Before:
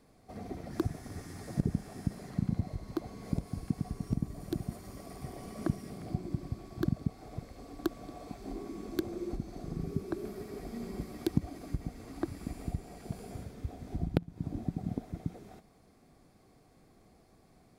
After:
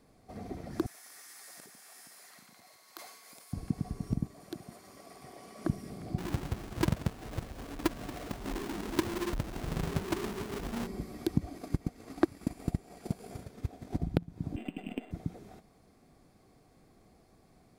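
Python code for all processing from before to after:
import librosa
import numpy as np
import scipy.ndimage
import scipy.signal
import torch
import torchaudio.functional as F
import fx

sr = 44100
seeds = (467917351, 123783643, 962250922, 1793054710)

y = fx.chain(x, sr, fx.highpass(hz=1300.0, slope=12),
    fx.high_shelf(hz=9700.0, db=12.0),
    fx.sustainer(db_per_s=50.0), at=(0.86, 3.53))
y = fx.chain(y, sr, fx.highpass(hz=620.0, slope=6),
    fx.high_shelf(hz=9300.0, db=-5.0), at=(4.27, 5.65))
y = fx.chain(y, sr, fx.halfwave_hold(),
    fx.transformer_sat(knee_hz=130.0), at=(6.18, 10.87))
y = fx.chain(y, sr, fx.low_shelf(hz=140.0, db=-10.0),
    fx.transient(attack_db=10, sustain_db=-5), at=(11.57, 14.03))
y = fx.chain(y, sr, fx.sample_sort(block=16),
    fx.highpass(hz=220.0, slope=24),
    fx.resample_linear(factor=8), at=(14.56, 15.11))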